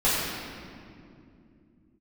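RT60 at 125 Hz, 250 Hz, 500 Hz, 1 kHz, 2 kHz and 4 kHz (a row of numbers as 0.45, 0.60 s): 3.9, 4.1, 3.1, 2.1, 1.9, 1.5 s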